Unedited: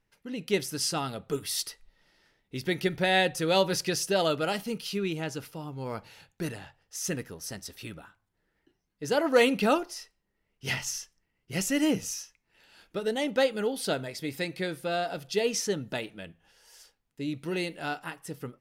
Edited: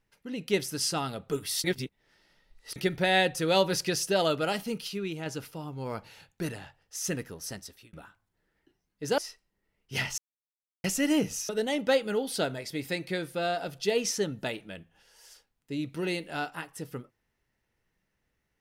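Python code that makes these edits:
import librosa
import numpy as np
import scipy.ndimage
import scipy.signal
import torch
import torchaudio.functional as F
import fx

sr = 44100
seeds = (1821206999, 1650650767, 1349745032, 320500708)

y = fx.edit(x, sr, fx.reverse_span(start_s=1.64, length_s=1.12),
    fx.clip_gain(start_s=4.88, length_s=0.38, db=-3.5),
    fx.fade_out_span(start_s=7.52, length_s=0.41),
    fx.cut(start_s=9.18, length_s=0.72),
    fx.silence(start_s=10.9, length_s=0.66),
    fx.cut(start_s=12.21, length_s=0.77), tone=tone)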